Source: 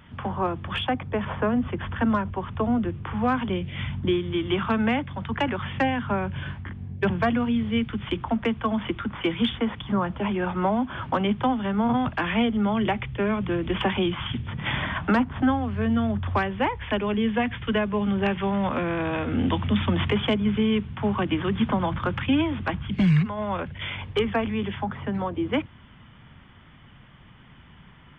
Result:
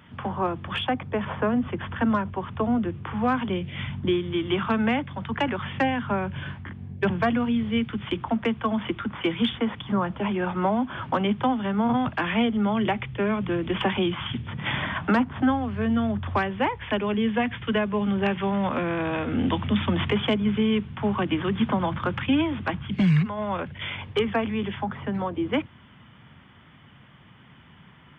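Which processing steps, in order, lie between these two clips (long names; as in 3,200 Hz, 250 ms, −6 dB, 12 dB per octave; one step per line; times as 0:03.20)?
high-pass filter 93 Hz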